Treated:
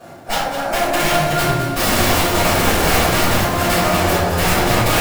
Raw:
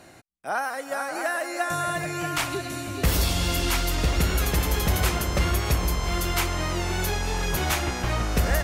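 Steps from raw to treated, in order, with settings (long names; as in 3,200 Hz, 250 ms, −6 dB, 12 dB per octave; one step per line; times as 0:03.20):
compressor on every frequency bin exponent 0.6
high-pass filter 98 Hz 24 dB per octave
hum removal 324 Hz, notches 35
noise gate −23 dBFS, range −10 dB
high shelf with overshoot 1,600 Hz −7 dB, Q 1.5
in parallel at −3 dB: brickwall limiter −17.5 dBFS, peak gain reduction 7 dB
on the sum: wrap-around overflow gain 15.5 dB
phase-vocoder stretch with locked phases 0.58×
surface crackle 160 per second −39 dBFS
on a send: delay that swaps between a low-pass and a high-pass 104 ms, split 1,000 Hz, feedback 60%, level −5 dB
on the sum: rectangular room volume 170 cubic metres, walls mixed, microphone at 5.6 metres
level −8 dB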